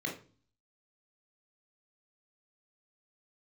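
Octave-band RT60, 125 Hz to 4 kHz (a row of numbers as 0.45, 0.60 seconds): 0.70, 0.60, 0.40, 0.35, 0.35, 0.35 seconds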